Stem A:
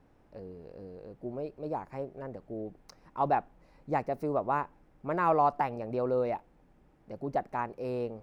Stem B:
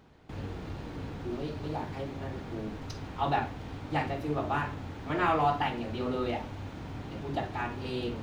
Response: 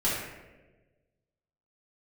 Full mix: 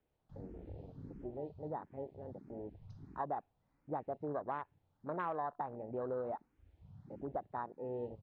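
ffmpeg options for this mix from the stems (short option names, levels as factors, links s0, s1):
-filter_complex "[0:a]lowpass=f=2400:w=0.5412,lowpass=f=2400:w=1.3066,lowshelf=f=380:g=-4,volume=0.562,asplit=2[s0][s1];[1:a]highshelf=f=5000:g=-6,asplit=2[s2][s3];[s3]afreqshift=1.5[s4];[s2][s4]amix=inputs=2:normalize=1,volume=-1,adelay=0.8,volume=0.473[s5];[s1]apad=whole_len=362667[s6];[s5][s6]sidechaincompress=threshold=0.00501:ratio=6:attack=16:release=1090[s7];[s0][s7]amix=inputs=2:normalize=0,afwtdn=0.01,acompressor=threshold=0.0178:ratio=5"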